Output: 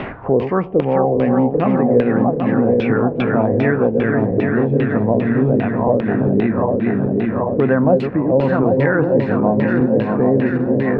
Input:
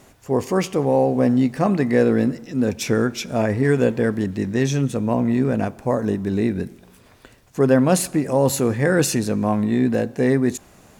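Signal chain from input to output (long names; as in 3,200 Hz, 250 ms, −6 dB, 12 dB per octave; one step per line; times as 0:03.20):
feedback delay that plays each chunk backwards 392 ms, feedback 76%, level −4.5 dB
high-shelf EQ 4,900 Hz +11.5 dB
reversed playback
upward compression, threshold −19 dBFS
reversed playback
auto-filter low-pass saw down 2.5 Hz 430–3,100 Hz
high-frequency loss of the air 380 metres
multiband upward and downward compressor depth 70%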